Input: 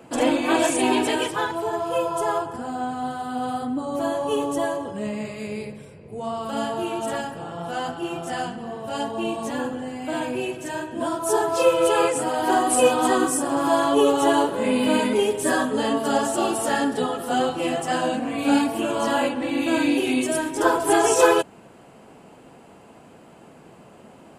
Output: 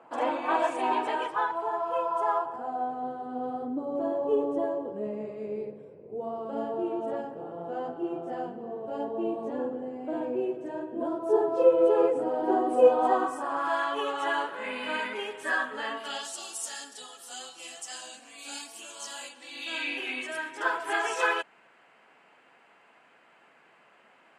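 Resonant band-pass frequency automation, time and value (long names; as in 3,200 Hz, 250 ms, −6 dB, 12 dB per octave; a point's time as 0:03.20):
resonant band-pass, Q 1.7
0:02.39 1,000 Hz
0:03.18 430 Hz
0:12.71 430 Hz
0:13.79 1,700 Hz
0:15.91 1,700 Hz
0:16.44 6,300 Hz
0:19.40 6,300 Hz
0:20.02 1,900 Hz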